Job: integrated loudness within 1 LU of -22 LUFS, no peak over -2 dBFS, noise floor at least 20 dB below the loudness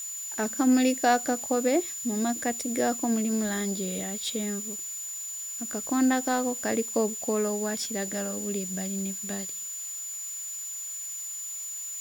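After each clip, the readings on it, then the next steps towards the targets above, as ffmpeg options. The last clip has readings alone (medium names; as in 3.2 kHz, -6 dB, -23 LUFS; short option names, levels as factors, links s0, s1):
steady tone 7 kHz; tone level -34 dBFS; noise floor -37 dBFS; noise floor target -49 dBFS; loudness -28.5 LUFS; peak level -11.0 dBFS; loudness target -22.0 LUFS
-> -af "bandreject=f=7000:w=30"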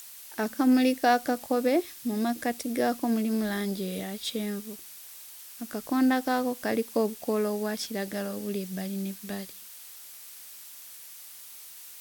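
steady tone not found; noise floor -46 dBFS; noise floor target -49 dBFS
-> -af "afftdn=nr=6:nf=-46"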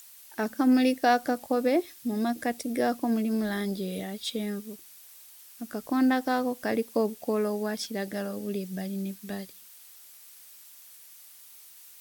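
noise floor -51 dBFS; loudness -28.5 LUFS; peak level -12.0 dBFS; loudness target -22.0 LUFS
-> -af "volume=2.11"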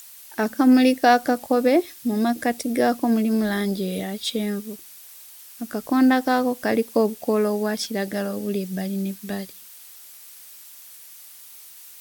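loudness -22.0 LUFS; peak level -5.5 dBFS; noise floor -45 dBFS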